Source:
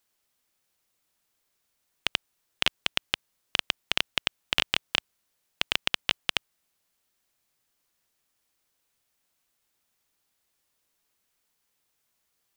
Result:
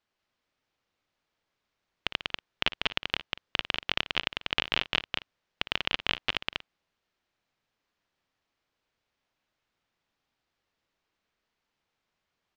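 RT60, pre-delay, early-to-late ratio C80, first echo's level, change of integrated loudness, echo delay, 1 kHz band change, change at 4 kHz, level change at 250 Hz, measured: no reverb audible, no reverb audible, no reverb audible, −14.5 dB, −2.0 dB, 57 ms, +1.0 dB, −2.0 dB, +1.5 dB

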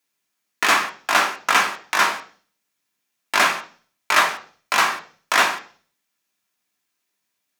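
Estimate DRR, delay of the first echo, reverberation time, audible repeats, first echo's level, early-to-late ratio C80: 2.0 dB, no echo audible, 0.40 s, no echo audible, no echo audible, 18.0 dB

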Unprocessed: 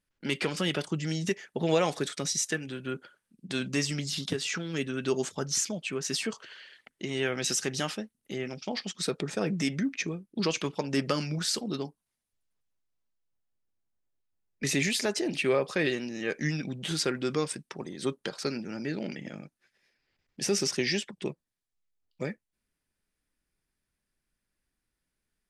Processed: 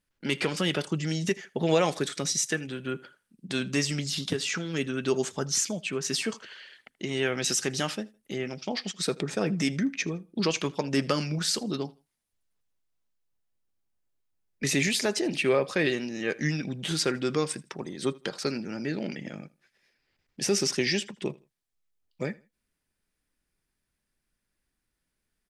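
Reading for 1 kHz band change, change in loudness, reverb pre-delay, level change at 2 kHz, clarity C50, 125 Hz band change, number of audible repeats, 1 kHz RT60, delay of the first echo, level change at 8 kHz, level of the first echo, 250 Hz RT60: +2.0 dB, +2.0 dB, no reverb audible, +2.0 dB, no reverb audible, +2.0 dB, 2, no reverb audible, 80 ms, +2.0 dB, −23.0 dB, no reverb audible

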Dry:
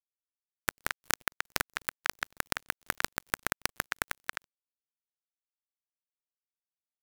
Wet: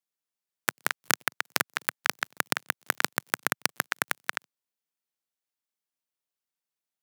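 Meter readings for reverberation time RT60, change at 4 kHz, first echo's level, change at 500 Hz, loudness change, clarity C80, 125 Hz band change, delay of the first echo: no reverb audible, +4.5 dB, no echo audible, +4.5 dB, +4.5 dB, no reverb audible, +1.0 dB, no echo audible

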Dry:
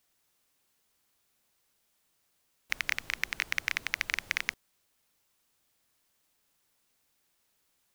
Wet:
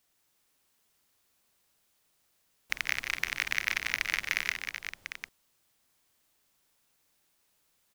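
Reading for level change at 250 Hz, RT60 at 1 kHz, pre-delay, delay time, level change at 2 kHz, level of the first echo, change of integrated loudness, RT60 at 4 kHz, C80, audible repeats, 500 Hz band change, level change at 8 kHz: +1.5 dB, no reverb audible, no reverb audible, 48 ms, +2.0 dB, −14.5 dB, +0.5 dB, no reverb audible, no reverb audible, 6, +1.5 dB, +1.5 dB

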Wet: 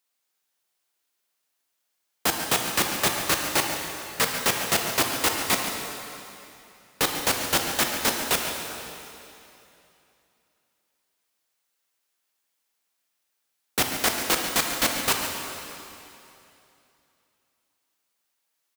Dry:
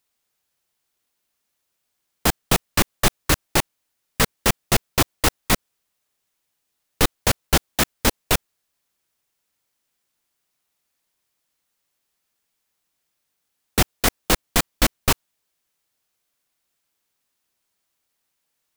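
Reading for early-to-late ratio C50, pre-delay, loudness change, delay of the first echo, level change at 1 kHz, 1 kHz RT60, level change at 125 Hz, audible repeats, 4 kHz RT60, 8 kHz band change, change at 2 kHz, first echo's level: 2.5 dB, 7 ms, −2.5 dB, 141 ms, −1.5 dB, 2.8 s, −12.0 dB, 1, 2.7 s, −1.0 dB, −1.0 dB, −11.5 dB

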